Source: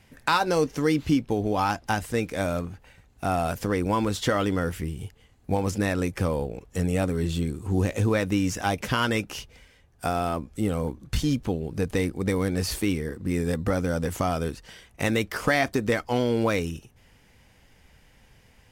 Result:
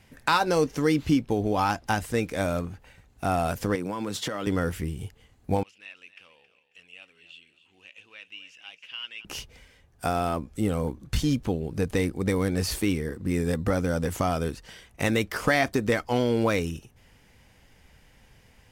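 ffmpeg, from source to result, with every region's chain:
-filter_complex "[0:a]asettb=1/sr,asplit=3[a][b][c];[a]atrim=end=3.754[d];[b]atrim=start=3.75:end=4.47,asetpts=PTS-STARTPTS,afade=t=in:d=0.004:c=qsin,afade=t=out:st=0.716:d=0.004:c=qsin,highpass=f=120:w=0.5412,highpass=f=120:w=1.3066,acompressor=threshold=-26dB:ratio=10:attack=3.2:release=140:knee=1:detection=peak[e];[c]atrim=start=4.466[f];[d][e]acrossfade=d=0.004:c1=hsin:c2=qsin[g];[g][f]acrossfade=d=0.004:c1=qsin:c2=hsin,asettb=1/sr,asplit=3[h][i][j];[h]atrim=end=5.634[k];[i]atrim=start=5.63:end=9.25,asetpts=PTS-STARTPTS,afade=t=in:d=0.004:c=qsin,afade=t=out:st=3.616:d=0.004:c=qsin,bandpass=f=2.8k:t=q:w=9.3,aecho=1:1:271|542|813:0.2|0.0678|0.0231,atrim=end_sample=159642[l];[j]atrim=start=9.246[m];[k][l]acrossfade=d=0.004:c1=hsin:c2=qsin[n];[n][m]acrossfade=d=0.004:c1=qsin:c2=hsin"

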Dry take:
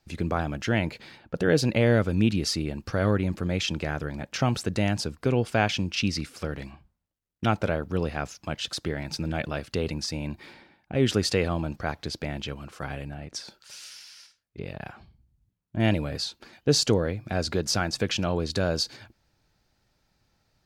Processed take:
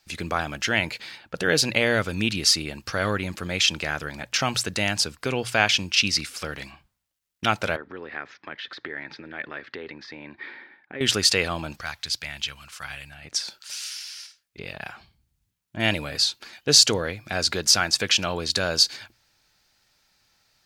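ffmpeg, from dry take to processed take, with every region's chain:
-filter_complex "[0:a]asettb=1/sr,asplit=3[a][b][c];[a]atrim=end=7.764[d];[b]atrim=start=7.76:end=11.01,asetpts=PTS-STARTPTS,afade=t=in:d=0.004:c=qsin,afade=t=out:st=3.246:d=0.004:c=qsin,acompressor=threshold=-35dB:ratio=2.5:attack=3.2:release=140:knee=1:detection=peak,highpass=160,equalizer=f=170:t=q:w=4:g=-6,equalizer=f=270:t=q:w=4:g=4,equalizer=f=390:t=q:w=4:g=6,equalizer=f=680:t=q:w=4:g=-4,equalizer=f=1.8k:t=q:w=4:g=8,equalizer=f=2.8k:t=q:w=4:g=-9,lowpass=f=3.1k:w=0.5412,lowpass=f=3.1k:w=1.3066[e];[c]atrim=start=11.006[f];[d][e]acrossfade=d=0.004:c1=hsin:c2=qsin[g];[g][f]acrossfade=d=0.004:c1=qsin:c2=hsin,asettb=1/sr,asplit=3[h][i][j];[h]atrim=end=11.814[k];[i]atrim=start=11.81:end=13.25,asetpts=PTS-STARTPTS,afade=t=in:d=0.004:c=qsin,afade=t=out:st=1.436:d=0.004:c=qsin,equalizer=f=370:w=0.52:g=-15,volume=24dB,asoftclip=hard,volume=-24dB[l];[j]atrim=start=13.246[m];[k][l]acrossfade=d=0.004:c1=hsin:c2=qsin[n];[n][m]acrossfade=d=0.004:c1=qsin:c2=hsin,tiltshelf=f=880:g=-8,bandreject=f=60:t=h:w=6,bandreject=f=120:t=h:w=6,volume=2.5dB"

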